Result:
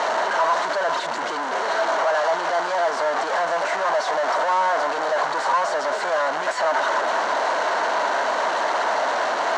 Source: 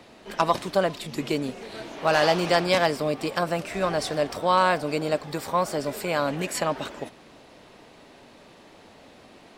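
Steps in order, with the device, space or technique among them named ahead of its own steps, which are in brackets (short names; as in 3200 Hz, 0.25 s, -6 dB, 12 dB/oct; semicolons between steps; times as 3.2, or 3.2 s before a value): home computer beeper (infinite clipping; speaker cabinet 650–5700 Hz, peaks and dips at 650 Hz +8 dB, 970 Hz +9 dB, 1500 Hz +6 dB, 2500 Hz -10 dB, 3500 Hz -7 dB, 5000 Hz -9 dB); high shelf 8400 Hz -4.5 dB; gain +4.5 dB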